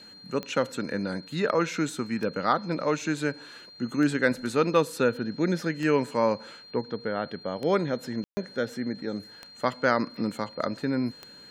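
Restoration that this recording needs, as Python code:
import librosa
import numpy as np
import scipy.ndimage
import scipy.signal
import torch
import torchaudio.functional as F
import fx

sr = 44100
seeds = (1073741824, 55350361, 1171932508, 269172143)

y = fx.fix_declick_ar(x, sr, threshold=10.0)
y = fx.notch(y, sr, hz=4200.0, q=30.0)
y = fx.fix_ambience(y, sr, seeds[0], print_start_s=3.31, print_end_s=3.81, start_s=8.24, end_s=8.37)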